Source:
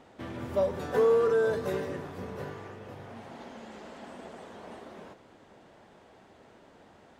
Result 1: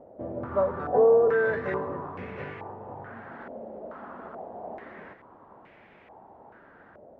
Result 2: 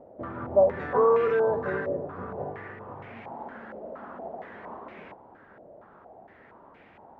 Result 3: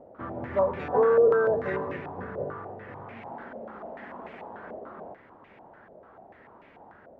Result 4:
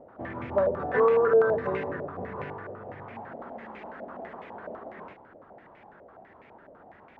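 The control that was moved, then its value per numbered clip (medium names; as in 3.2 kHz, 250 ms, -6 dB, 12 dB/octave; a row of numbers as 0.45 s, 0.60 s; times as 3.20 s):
step-sequenced low-pass, rate: 2.3 Hz, 4.3 Hz, 6.8 Hz, 12 Hz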